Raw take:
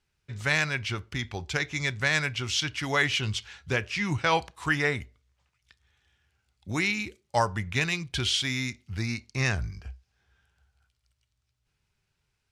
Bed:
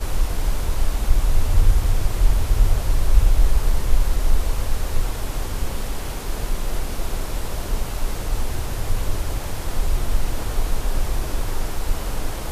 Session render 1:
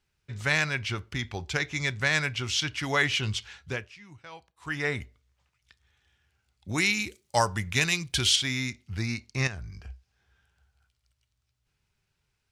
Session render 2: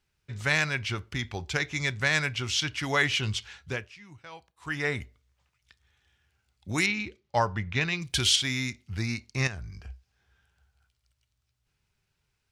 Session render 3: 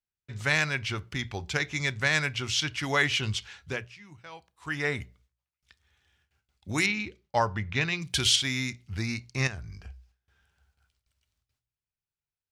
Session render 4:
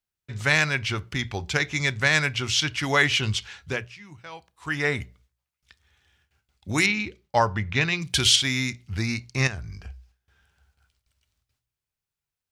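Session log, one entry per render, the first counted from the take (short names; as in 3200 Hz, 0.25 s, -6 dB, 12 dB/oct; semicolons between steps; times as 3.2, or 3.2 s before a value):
3.51–5 dip -21.5 dB, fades 0.46 s; 6.78–8.36 high shelf 5000 Hz +12 dB; 9.47–9.9 compressor 2.5:1, threshold -39 dBFS
6.86–8.02 air absorption 230 m
gate with hold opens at -60 dBFS; notches 60/120/180 Hz
gain +4.5 dB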